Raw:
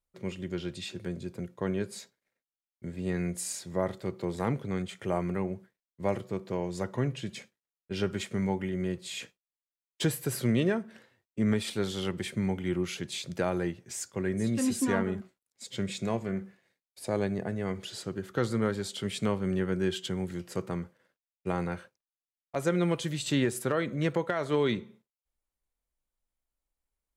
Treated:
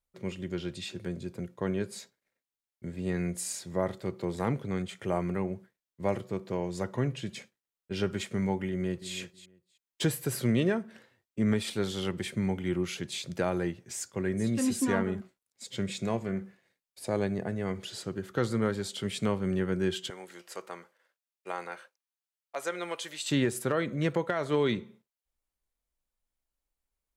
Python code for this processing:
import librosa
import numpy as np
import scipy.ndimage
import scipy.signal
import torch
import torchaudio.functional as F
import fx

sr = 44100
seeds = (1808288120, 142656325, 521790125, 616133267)

y = fx.echo_throw(x, sr, start_s=8.69, length_s=0.44, ms=320, feedback_pct=15, wet_db=-13.5)
y = fx.highpass(y, sr, hz=640.0, slope=12, at=(20.1, 23.31))